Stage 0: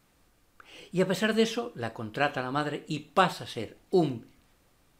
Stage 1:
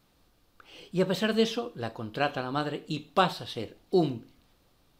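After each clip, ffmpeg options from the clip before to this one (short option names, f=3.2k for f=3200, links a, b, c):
-af "equalizer=f=2k:t=o:w=1:g=-5,equalizer=f=4k:t=o:w=1:g=5,equalizer=f=8k:t=o:w=1:g=-6"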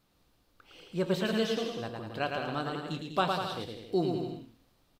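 -af "aecho=1:1:110|198|268.4|324.7|369.8:0.631|0.398|0.251|0.158|0.1,volume=-5dB"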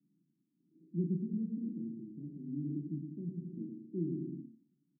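-filter_complex "[0:a]aphaser=in_gain=1:out_gain=1:delay=1.6:decay=0.32:speed=1.1:type=triangular,asuperpass=centerf=220:order=12:qfactor=1.1,asplit=2[a][b];[b]adelay=35,volume=-7dB[c];[a][c]amix=inputs=2:normalize=0,volume=-2dB"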